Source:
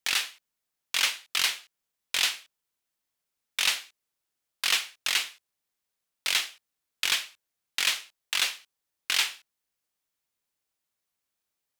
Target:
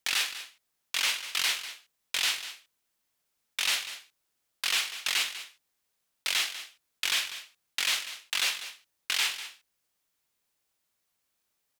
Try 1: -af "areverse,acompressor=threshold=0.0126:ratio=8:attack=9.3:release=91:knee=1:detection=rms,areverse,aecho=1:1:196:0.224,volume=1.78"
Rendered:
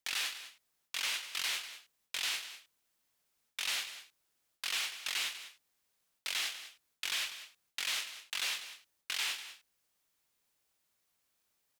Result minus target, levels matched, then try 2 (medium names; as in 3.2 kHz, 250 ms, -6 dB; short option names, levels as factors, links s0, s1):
compression: peak gain reduction +8 dB
-af "areverse,acompressor=threshold=0.0355:ratio=8:attack=9.3:release=91:knee=1:detection=rms,areverse,aecho=1:1:196:0.224,volume=1.78"